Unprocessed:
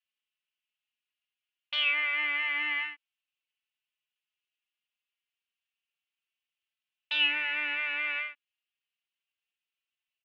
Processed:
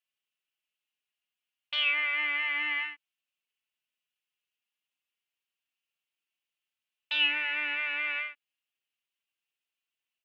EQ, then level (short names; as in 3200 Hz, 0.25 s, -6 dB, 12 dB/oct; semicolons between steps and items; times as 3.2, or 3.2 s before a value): HPF 130 Hz; 0.0 dB